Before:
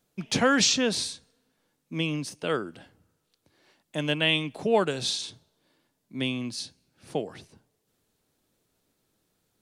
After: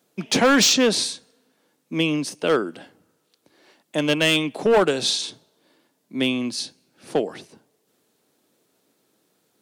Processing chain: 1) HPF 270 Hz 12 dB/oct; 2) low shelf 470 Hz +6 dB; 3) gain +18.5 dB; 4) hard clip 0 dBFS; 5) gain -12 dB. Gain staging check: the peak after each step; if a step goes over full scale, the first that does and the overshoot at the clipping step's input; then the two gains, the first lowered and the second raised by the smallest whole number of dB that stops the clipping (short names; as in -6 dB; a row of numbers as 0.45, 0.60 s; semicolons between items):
-10.0, -8.5, +10.0, 0.0, -12.0 dBFS; step 3, 10.0 dB; step 3 +8.5 dB, step 5 -2 dB